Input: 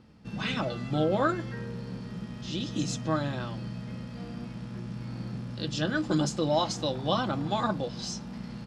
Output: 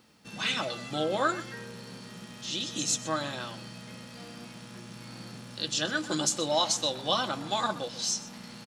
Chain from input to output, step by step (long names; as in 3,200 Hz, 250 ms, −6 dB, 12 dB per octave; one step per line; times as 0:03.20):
RIAA equalisation recording
notch filter 5,000 Hz, Q 12
single-tap delay 125 ms −17 dB